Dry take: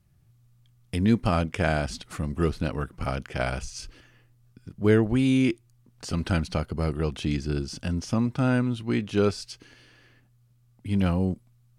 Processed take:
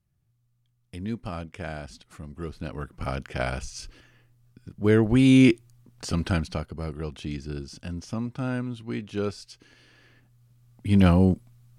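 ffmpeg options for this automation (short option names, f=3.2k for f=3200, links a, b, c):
-af "volume=18.5dB,afade=t=in:st=2.47:d=0.7:silence=0.316228,afade=t=in:st=4.91:d=0.52:silence=0.446684,afade=t=out:st=5.43:d=1.3:silence=0.237137,afade=t=in:st=9.51:d=1.56:silence=0.251189"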